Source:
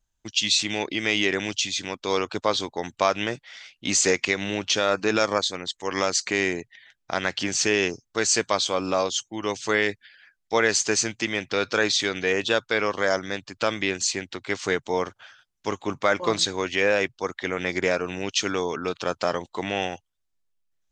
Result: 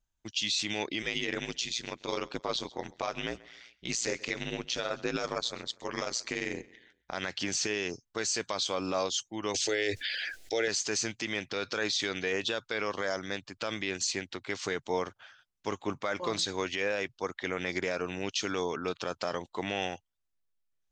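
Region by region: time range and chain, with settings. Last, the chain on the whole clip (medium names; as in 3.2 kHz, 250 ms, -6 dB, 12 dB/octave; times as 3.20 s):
1.02–7.14 s: ring modulator 59 Hz + feedback delay 132 ms, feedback 42%, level -23 dB
9.54–10.68 s: bass shelf 67 Hz -9.5 dB + static phaser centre 440 Hz, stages 4 + level flattener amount 70%
whole clip: dynamic bell 5.1 kHz, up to +5 dB, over -39 dBFS, Q 0.79; peak limiter -13.5 dBFS; treble shelf 6.9 kHz -6 dB; trim -5 dB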